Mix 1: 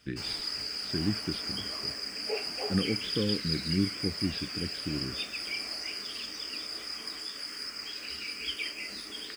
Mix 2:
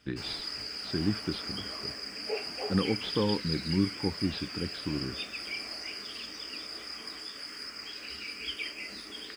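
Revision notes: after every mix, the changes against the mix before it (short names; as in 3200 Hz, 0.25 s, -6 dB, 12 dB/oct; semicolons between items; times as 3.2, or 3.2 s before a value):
speech: remove fixed phaser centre 2200 Hz, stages 4; master: add high shelf 5200 Hz -6.5 dB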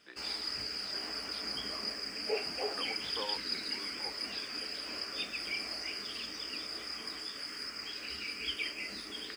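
speech: add ladder high-pass 550 Hz, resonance 35%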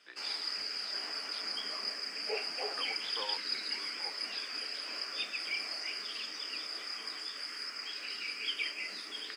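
master: add weighting filter A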